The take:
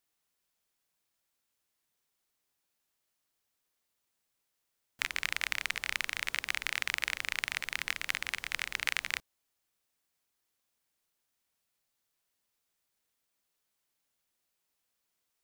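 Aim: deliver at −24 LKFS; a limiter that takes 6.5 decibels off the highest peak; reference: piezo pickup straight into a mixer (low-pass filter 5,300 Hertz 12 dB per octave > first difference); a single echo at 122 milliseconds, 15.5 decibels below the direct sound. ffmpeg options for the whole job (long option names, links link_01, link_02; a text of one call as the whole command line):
ffmpeg -i in.wav -af "alimiter=limit=-14.5dB:level=0:latency=1,lowpass=5300,aderivative,aecho=1:1:122:0.168,volume=22dB" out.wav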